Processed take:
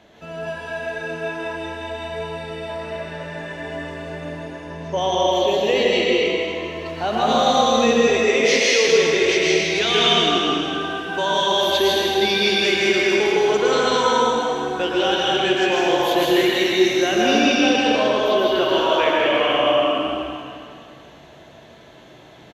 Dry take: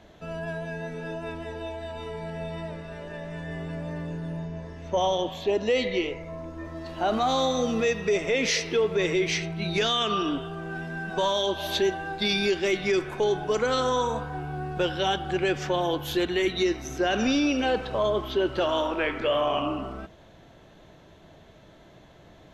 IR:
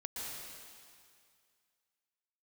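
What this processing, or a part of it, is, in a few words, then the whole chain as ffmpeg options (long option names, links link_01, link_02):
PA in a hall: -filter_complex "[0:a]asettb=1/sr,asplit=3[link_01][link_02][link_03];[link_01]atrim=end=8.104[link_04];[link_02]atrim=start=8.1:end=8.88,asetpts=PTS-STARTPTS,afade=type=in:duration=0.004:curve=qsin,afade=type=out:start_time=0.776:duration=0.004:curve=qsin,highpass=270[link_05];[link_03]atrim=start=8.876[link_06];[link_04][link_05]acrossfade=duration=0.004:curve1=hsin:curve2=qsin[link_07];[link_07][link_06]acrossfade=duration=0.004:curve1=qsin:curve2=hsin,highpass=frequency=170:poles=1,equalizer=frequency=2700:width_type=o:width=0.77:gain=3,aecho=1:1:160:0.501[link_08];[1:a]atrim=start_sample=2205[link_09];[link_08][link_09]afir=irnorm=-1:irlink=0,volume=7dB"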